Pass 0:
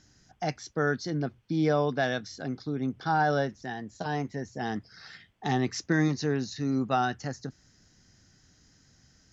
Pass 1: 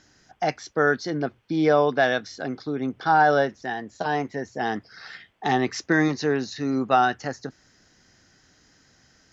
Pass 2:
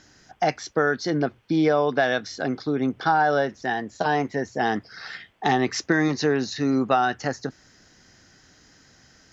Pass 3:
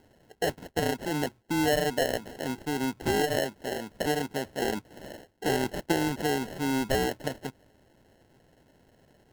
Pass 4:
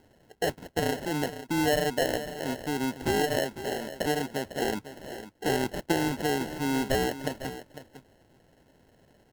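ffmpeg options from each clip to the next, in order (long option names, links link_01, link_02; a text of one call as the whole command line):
ffmpeg -i in.wav -af "bass=frequency=250:gain=-11,treble=frequency=4000:gain=-7,volume=8dB" out.wav
ffmpeg -i in.wav -af "acompressor=threshold=-21dB:ratio=4,volume=4dB" out.wav
ffmpeg -i in.wav -af "acrusher=samples=37:mix=1:aa=0.000001,volume=-6dB" out.wav
ffmpeg -i in.wav -af "aecho=1:1:502:0.237" out.wav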